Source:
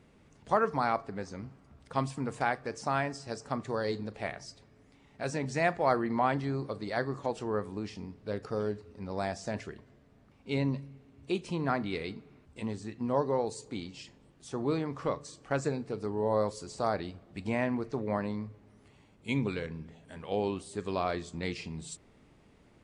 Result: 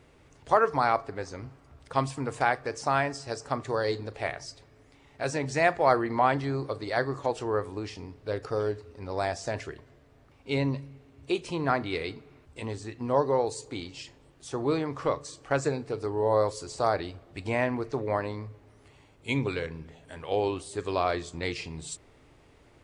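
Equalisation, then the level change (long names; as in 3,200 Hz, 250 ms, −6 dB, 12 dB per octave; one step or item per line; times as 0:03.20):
parametric band 200 Hz −14 dB 0.47 octaves
+5.0 dB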